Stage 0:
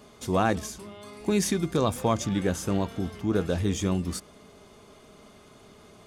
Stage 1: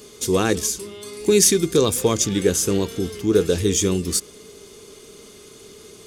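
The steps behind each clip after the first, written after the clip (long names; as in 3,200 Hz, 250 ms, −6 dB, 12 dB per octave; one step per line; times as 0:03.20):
drawn EQ curve 240 Hz 0 dB, 440 Hz +10 dB, 640 Hz −7 dB, 6,600 Hz +13 dB
level +3 dB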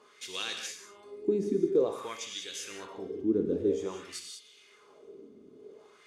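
reverb whose tail is shaped and stops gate 220 ms flat, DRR 3.5 dB
speech leveller 2 s
auto-filter band-pass sine 0.51 Hz 260–3,400 Hz
level −6 dB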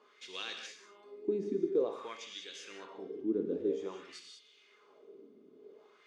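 band-pass filter 200–4,500 Hz
level −4.5 dB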